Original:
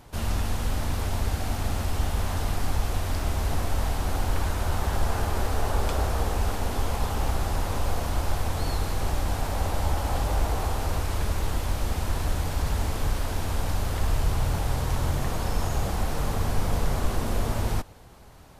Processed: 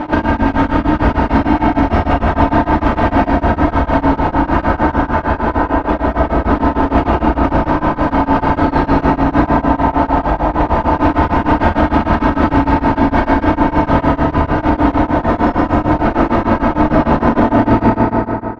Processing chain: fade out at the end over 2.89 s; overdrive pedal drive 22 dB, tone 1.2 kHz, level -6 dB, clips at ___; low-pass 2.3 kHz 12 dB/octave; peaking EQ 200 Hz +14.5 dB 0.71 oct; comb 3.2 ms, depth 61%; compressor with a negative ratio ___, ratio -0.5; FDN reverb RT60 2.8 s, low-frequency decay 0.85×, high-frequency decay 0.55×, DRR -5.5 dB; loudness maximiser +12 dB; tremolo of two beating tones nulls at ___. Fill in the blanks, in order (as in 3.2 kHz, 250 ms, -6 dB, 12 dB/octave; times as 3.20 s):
-11.5 dBFS, -26 dBFS, 6.6 Hz